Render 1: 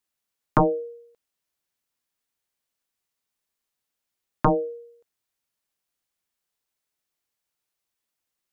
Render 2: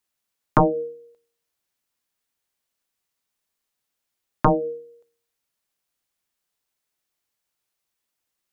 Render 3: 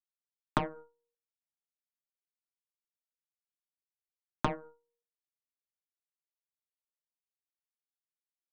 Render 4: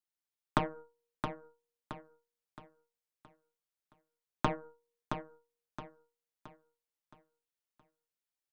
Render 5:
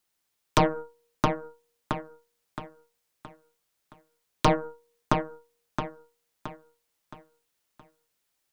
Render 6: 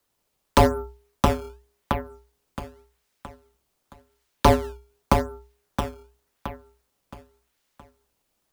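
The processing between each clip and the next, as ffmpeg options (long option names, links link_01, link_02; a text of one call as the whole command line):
ffmpeg -i in.wav -af "bandreject=frequency=77.88:width_type=h:width=4,bandreject=frequency=155.76:width_type=h:width=4,bandreject=frequency=233.64:width_type=h:width=4,bandreject=frequency=311.52:width_type=h:width=4,bandreject=frequency=389.4:width_type=h:width=4,bandreject=frequency=467.28:width_type=h:width=4,volume=2.5dB" out.wav
ffmpeg -i in.wav -af "acompressor=threshold=-16dB:ratio=10,aeval=exprs='0.447*(cos(1*acos(clip(val(0)/0.447,-1,1)))-cos(1*PI/2))+0.1*(cos(3*acos(clip(val(0)/0.447,-1,1)))-cos(3*PI/2))+0.0282*(cos(5*acos(clip(val(0)/0.447,-1,1)))-cos(5*PI/2))+0.0398*(cos(7*acos(clip(val(0)/0.447,-1,1)))-cos(7*PI/2))+0.00562*(cos(8*acos(clip(val(0)/0.447,-1,1)))-cos(8*PI/2))':channel_layout=same,volume=-5dB" out.wav
ffmpeg -i in.wav -af "aecho=1:1:670|1340|2010|2680|3350:0.447|0.174|0.0679|0.0265|0.0103" out.wav
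ffmpeg -i in.wav -af "aeval=exprs='0.266*sin(PI/2*3.98*val(0)/0.266)':channel_layout=same,volume=-1dB" out.wav
ffmpeg -i in.wav -filter_complex "[0:a]asplit=2[link_01][link_02];[link_02]acrusher=samples=13:mix=1:aa=0.000001:lfo=1:lforange=20.8:lforate=0.88,volume=-4.5dB[link_03];[link_01][link_03]amix=inputs=2:normalize=0,afreqshift=-62,volume=1.5dB" out.wav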